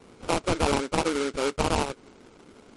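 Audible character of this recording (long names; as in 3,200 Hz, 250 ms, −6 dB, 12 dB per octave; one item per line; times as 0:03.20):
aliases and images of a low sample rate 1,800 Hz, jitter 20%
MP3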